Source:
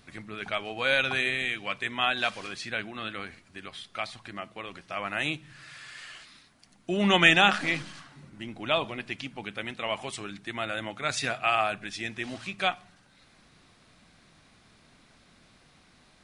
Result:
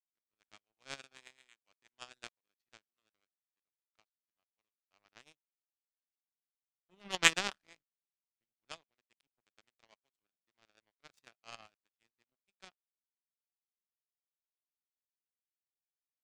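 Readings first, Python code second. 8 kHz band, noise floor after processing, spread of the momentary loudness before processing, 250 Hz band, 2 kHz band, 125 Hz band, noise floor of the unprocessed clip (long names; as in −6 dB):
−1.0 dB, below −85 dBFS, 19 LU, −22.0 dB, −13.5 dB, −21.5 dB, −60 dBFS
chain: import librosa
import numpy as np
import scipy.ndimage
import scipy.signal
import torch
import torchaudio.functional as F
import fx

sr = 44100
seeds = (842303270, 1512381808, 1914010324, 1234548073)

y = fx.harmonic_tremolo(x, sr, hz=8.2, depth_pct=50, crossover_hz=590.0)
y = fx.power_curve(y, sr, exponent=3.0)
y = F.gain(torch.from_numpy(y), 3.0).numpy()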